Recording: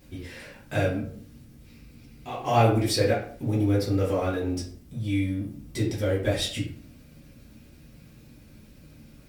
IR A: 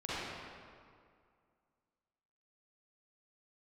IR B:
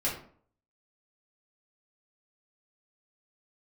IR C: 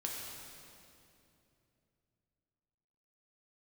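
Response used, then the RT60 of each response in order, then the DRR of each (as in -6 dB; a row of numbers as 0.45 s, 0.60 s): B; 2.1 s, 0.50 s, 2.8 s; -11.5 dB, -8.0 dB, -2.5 dB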